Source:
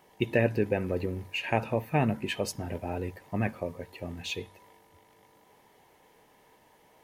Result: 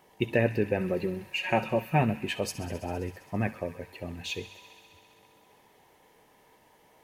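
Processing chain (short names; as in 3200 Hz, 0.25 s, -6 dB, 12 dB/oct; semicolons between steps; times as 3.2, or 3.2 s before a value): 0.8–2.02 comb 5.4 ms, depth 67%; thin delay 66 ms, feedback 84%, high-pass 1800 Hz, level -14.5 dB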